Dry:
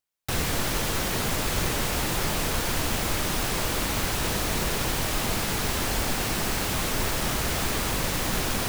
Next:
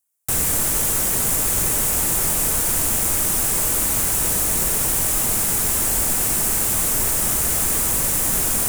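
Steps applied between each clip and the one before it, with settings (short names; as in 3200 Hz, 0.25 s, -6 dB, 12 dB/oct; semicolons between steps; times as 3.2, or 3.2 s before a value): resonant high shelf 6100 Hz +12.5 dB, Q 1.5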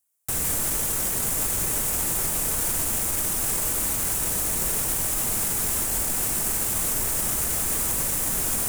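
limiter -15.5 dBFS, peak gain reduction 8 dB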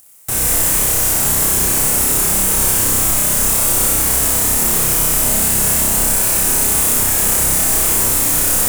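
upward compressor, threshold -39 dBFS; flutter echo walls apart 5.3 m, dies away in 1 s; gain +6 dB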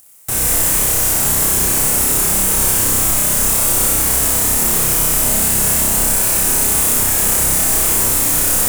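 nothing audible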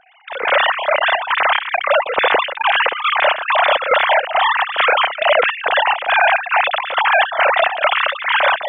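sine-wave speech; chopper 2.3 Hz, depth 65%, duty 65%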